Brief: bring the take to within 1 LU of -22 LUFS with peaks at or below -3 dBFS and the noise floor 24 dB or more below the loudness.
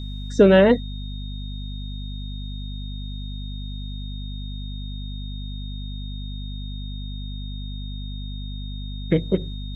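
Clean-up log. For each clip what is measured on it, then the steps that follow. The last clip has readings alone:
hum 50 Hz; harmonics up to 250 Hz; hum level -29 dBFS; steady tone 3700 Hz; tone level -41 dBFS; loudness -26.0 LUFS; peak -3.0 dBFS; loudness target -22.0 LUFS
-> notches 50/100/150/200/250 Hz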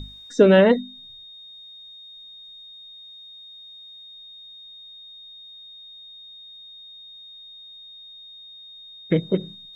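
hum none; steady tone 3700 Hz; tone level -41 dBFS
-> notch 3700 Hz, Q 30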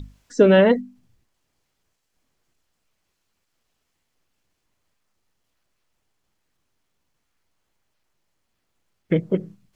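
steady tone none; loudness -18.5 LUFS; peak -4.0 dBFS; loudness target -22.0 LUFS
-> gain -3.5 dB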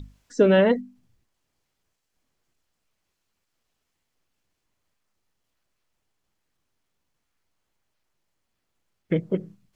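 loudness -22.0 LUFS; peak -7.5 dBFS; noise floor -79 dBFS

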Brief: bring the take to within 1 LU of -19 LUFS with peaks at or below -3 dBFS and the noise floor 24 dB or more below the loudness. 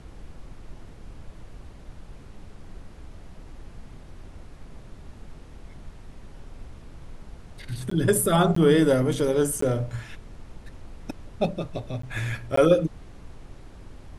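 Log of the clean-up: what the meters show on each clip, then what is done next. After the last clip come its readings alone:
dropouts 5; longest dropout 14 ms; noise floor -46 dBFS; noise floor target -48 dBFS; loudness -23.5 LUFS; peak -6.5 dBFS; loudness target -19.0 LUFS
-> interpolate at 7.9/8.55/9.61/12.02/12.56, 14 ms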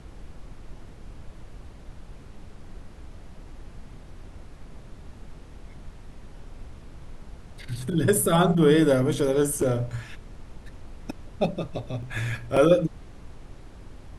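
dropouts 0; noise floor -46 dBFS; noise floor target -48 dBFS
-> noise print and reduce 6 dB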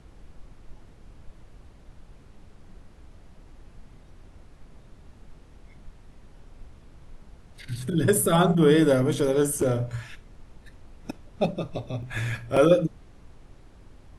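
noise floor -52 dBFS; loudness -23.5 LUFS; peak -6.5 dBFS; loudness target -19.0 LUFS
-> gain +4.5 dB; limiter -3 dBFS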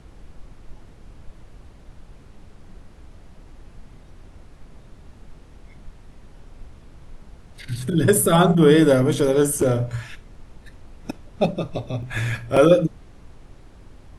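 loudness -19.0 LUFS; peak -3.0 dBFS; noise floor -48 dBFS

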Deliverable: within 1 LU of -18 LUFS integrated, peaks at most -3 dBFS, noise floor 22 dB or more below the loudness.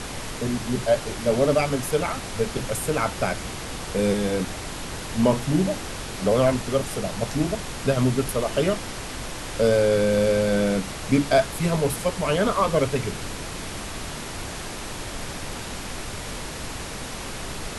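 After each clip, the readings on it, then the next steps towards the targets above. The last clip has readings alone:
noise floor -34 dBFS; noise floor target -47 dBFS; loudness -25.0 LUFS; peak -7.5 dBFS; loudness target -18.0 LUFS
-> noise print and reduce 13 dB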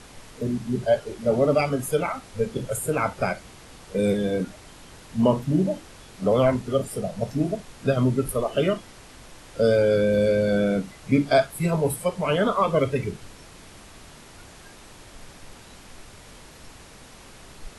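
noise floor -47 dBFS; loudness -24.0 LUFS; peak -7.5 dBFS; loudness target -18.0 LUFS
-> gain +6 dB; limiter -3 dBFS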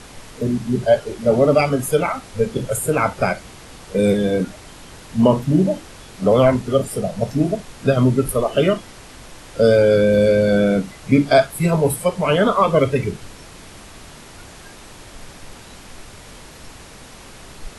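loudness -18.0 LUFS; peak -3.0 dBFS; noise floor -41 dBFS

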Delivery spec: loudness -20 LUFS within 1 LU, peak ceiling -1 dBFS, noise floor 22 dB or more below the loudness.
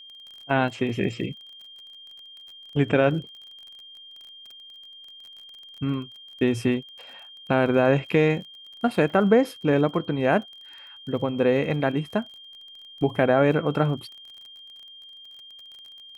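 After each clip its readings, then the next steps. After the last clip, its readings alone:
ticks 32/s; steady tone 3200 Hz; tone level -43 dBFS; loudness -24.0 LUFS; peak -7.0 dBFS; loudness target -20.0 LUFS
-> de-click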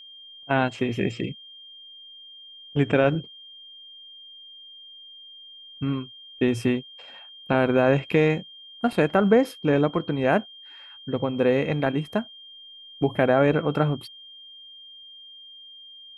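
ticks 0/s; steady tone 3200 Hz; tone level -43 dBFS
-> notch 3200 Hz, Q 30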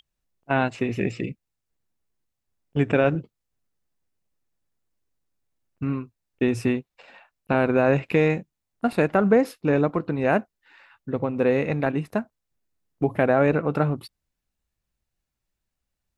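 steady tone none; loudness -24.0 LUFS; peak -7.0 dBFS; loudness target -20.0 LUFS
-> gain +4 dB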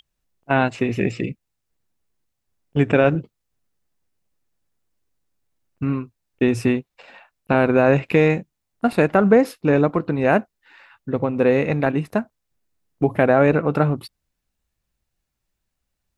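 loudness -20.0 LUFS; peak -3.0 dBFS; noise floor -79 dBFS

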